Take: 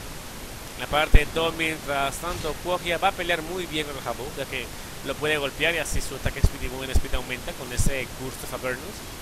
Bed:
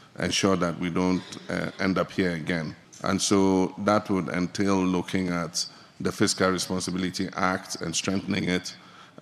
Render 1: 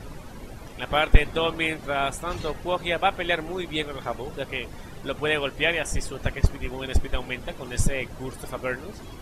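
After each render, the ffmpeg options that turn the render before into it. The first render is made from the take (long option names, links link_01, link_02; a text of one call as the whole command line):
ffmpeg -i in.wav -af "afftdn=noise_reduction=13:noise_floor=-38" out.wav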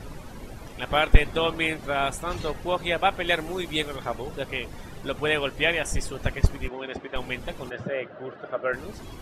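ffmpeg -i in.wav -filter_complex "[0:a]asettb=1/sr,asplit=3[link_01][link_02][link_03];[link_01]atrim=end=3.274[link_04];[link_02]atrim=start=3.27:end=3.96,asetpts=PTS-STARTPTS,afade=type=in:duration=0.004:curve=qsin,afade=type=out:start_time=0.686:duration=0.004:curve=qsin,highshelf=frequency=5000:gain=7[link_05];[link_03]atrim=start=3.956[link_06];[link_04][link_05]acrossfade=duration=0.004:curve1=hsin:curve2=qsin[link_07];[link_07][link_06]acrossfade=duration=0.004:curve1=qsin:curve2=hsin,asettb=1/sr,asplit=3[link_08][link_09][link_10];[link_08]atrim=end=6.684[link_11];[link_09]atrim=start=6.68:end=7.16,asetpts=PTS-STARTPTS,afade=type=in:duration=0.004:curve=qsin,afade=type=out:start_time=0.476:duration=0.004:curve=qsin,highpass=280,lowpass=2700[link_12];[link_10]atrim=start=7.156[link_13];[link_11][link_12]acrossfade=duration=0.004:curve1=hsin:curve2=qsin[link_14];[link_14][link_13]acrossfade=duration=0.004:curve1=qsin:curve2=hsin,asplit=3[link_15][link_16][link_17];[link_15]afade=type=out:start_time=7.69:duration=0.02[link_18];[link_16]highpass=frequency=150:width=0.5412,highpass=frequency=150:width=1.3066,equalizer=frequency=160:width_type=q:width=4:gain=-8,equalizer=frequency=250:width_type=q:width=4:gain=-8,equalizer=frequency=610:width_type=q:width=4:gain=8,equalizer=frequency=940:width_type=q:width=4:gain=-8,equalizer=frequency=1400:width_type=q:width=4:gain=7,equalizer=frequency=2300:width_type=q:width=4:gain=-8,lowpass=frequency=2800:width=0.5412,lowpass=frequency=2800:width=1.3066,afade=type=in:start_time=7.69:duration=0.02,afade=type=out:start_time=8.72:duration=0.02[link_19];[link_17]afade=type=in:start_time=8.72:duration=0.02[link_20];[link_18][link_19][link_20]amix=inputs=3:normalize=0" out.wav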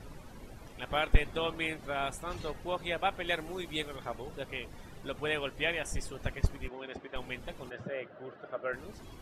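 ffmpeg -i in.wav -af "volume=-8.5dB" out.wav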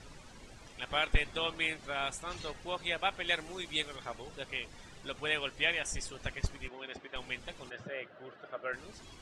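ffmpeg -i in.wav -af "lowpass=frequency=8700:width=0.5412,lowpass=frequency=8700:width=1.3066,tiltshelf=frequency=1500:gain=-5.5" out.wav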